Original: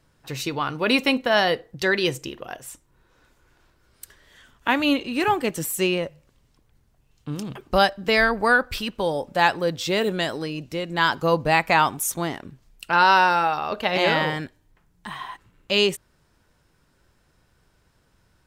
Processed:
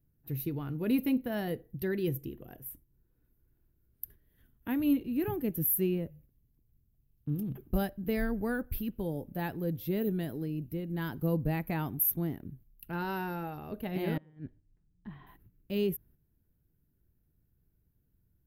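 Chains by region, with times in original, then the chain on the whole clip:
0:14.17–0:15.27: high-frequency loss of the air 200 metres + gate with flip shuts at −17 dBFS, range −26 dB
whole clip: notch filter 550 Hz, Q 12; noise gate −51 dBFS, range −7 dB; drawn EQ curve 120 Hz 0 dB, 310 Hz −5 dB, 1,100 Hz −25 dB, 1,700 Hz −20 dB, 7,900 Hz −30 dB, 12,000 Hz +5 dB

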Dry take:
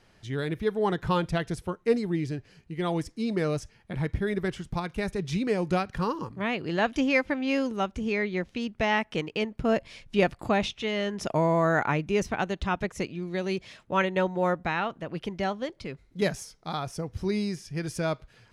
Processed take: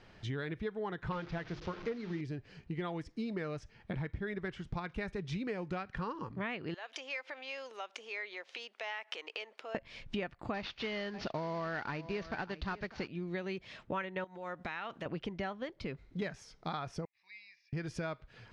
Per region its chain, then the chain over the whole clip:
0:01.12–0:02.21: linear delta modulator 32 kbit/s, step −37 dBFS + mains-hum notches 50/100/150/200/250/300/350/400 Hz
0:06.74–0:09.75: downward compressor 8 to 1, threshold −39 dBFS + high-pass filter 490 Hz 24 dB per octave + high-shelf EQ 2,200 Hz +9 dB
0:10.54–0:13.08: variable-slope delta modulation 32 kbit/s + parametric band 4,500 Hz +9 dB 0.22 octaves + single-tap delay 599 ms −18.5 dB
0:14.24–0:15.06: spectral tilt +2.5 dB per octave + downward compressor 4 to 1, threshold −38 dBFS
0:17.05–0:17.73: four-pole ladder band-pass 3,000 Hz, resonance 40% + high-frequency loss of the air 170 metres + phaser with its sweep stopped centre 2,100 Hz, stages 8
whole clip: low-pass filter 4,400 Hz 12 dB per octave; dynamic equaliser 1,700 Hz, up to +6 dB, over −42 dBFS, Q 1; downward compressor 8 to 1, threshold −38 dBFS; level +2.5 dB

